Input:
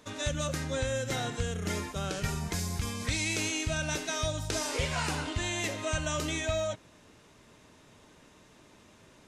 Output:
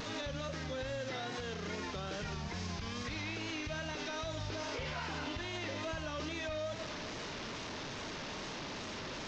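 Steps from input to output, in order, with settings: delta modulation 32 kbps, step -38.5 dBFS; compressor 3:1, threshold -35 dBFS, peak gain reduction 7.5 dB; bell 72 Hz -3.5 dB 2.4 oct; reverb RT60 1.7 s, pre-delay 77 ms, DRR 13.5 dB; vibrato 2.4 Hz 56 cents; 1.01–1.68 low shelf 130 Hz -10.5 dB; limiter -33.5 dBFS, peak gain reduction 7.5 dB; gain +2.5 dB

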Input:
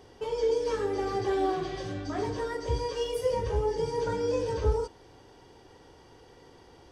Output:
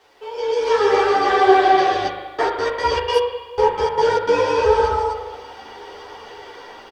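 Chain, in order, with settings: AGC gain up to 15 dB; loudspeakers at several distances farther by 52 m -3 dB, 88 m -3 dB; 2.07–4.33 step gate "x.x.xx.x...." 151 bpm -60 dB; spring tank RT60 1.3 s, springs 39 ms, chirp 25 ms, DRR 3.5 dB; bit-crush 9-bit; three-band isolator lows -19 dB, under 480 Hz, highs -14 dB, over 4800 Hz; ensemble effect; gain +4.5 dB

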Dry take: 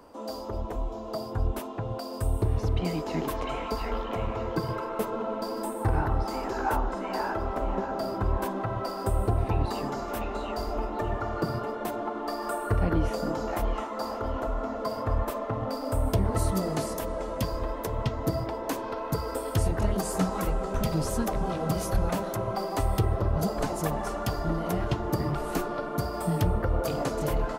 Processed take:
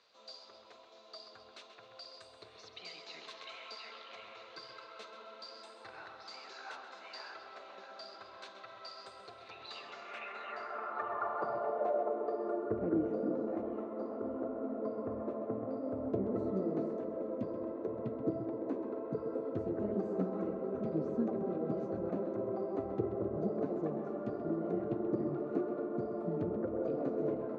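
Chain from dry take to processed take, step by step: added noise brown -45 dBFS; speaker cabinet 150–5800 Hz, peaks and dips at 170 Hz -6 dB, 290 Hz -9 dB, 900 Hz -9 dB, 1800 Hz -3 dB, 3100 Hz -8 dB, 5100 Hz -9 dB; on a send: tape echo 0.131 s, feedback 66%, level -8 dB, low-pass 4500 Hz; on the sum: band-pass sweep 4100 Hz -> 300 Hz, 9.53–12.8; gain +4.5 dB

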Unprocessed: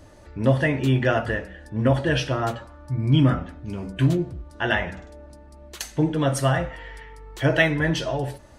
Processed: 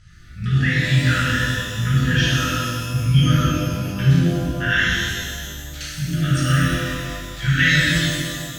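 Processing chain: ending faded out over 1.00 s; LPF 6300 Hz 12 dB/oct; AM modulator 54 Hz, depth 30%; brick-wall FIR band-stop 210–1200 Hz; shimmer reverb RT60 1.9 s, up +12 st, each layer -8 dB, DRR -9 dB

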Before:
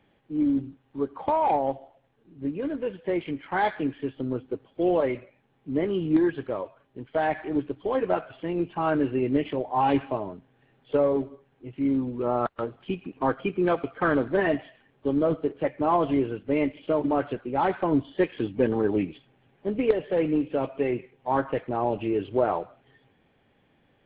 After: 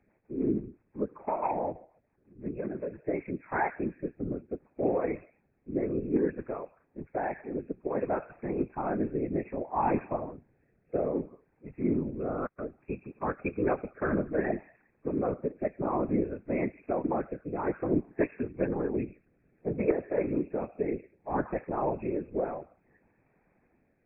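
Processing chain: rotary speaker horn 6 Hz, later 0.6 Hz, at 2.78; brick-wall FIR low-pass 2600 Hz; whisperiser; gain -3.5 dB

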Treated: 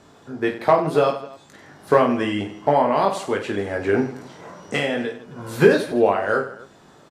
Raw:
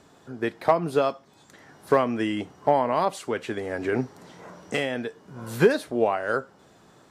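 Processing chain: high shelf 9600 Hz -6 dB; reverse bouncing-ball echo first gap 20 ms, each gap 1.5×, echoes 5; gain +3 dB

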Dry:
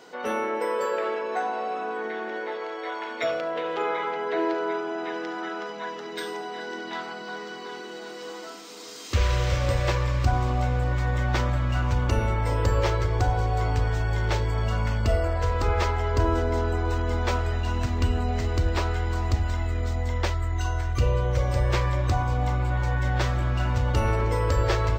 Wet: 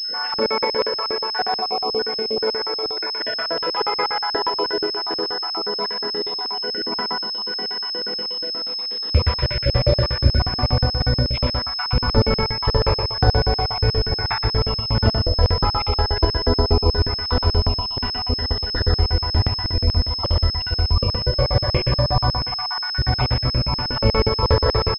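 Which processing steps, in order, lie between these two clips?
random spectral dropouts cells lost 59%; loudspeakers at several distances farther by 21 m -12 dB, 42 m -6 dB; Schroeder reverb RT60 0.37 s, combs from 28 ms, DRR 2.5 dB; crackling interface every 0.12 s, samples 2048, zero, from 0.34; pulse-width modulation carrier 5200 Hz; gain +7.5 dB

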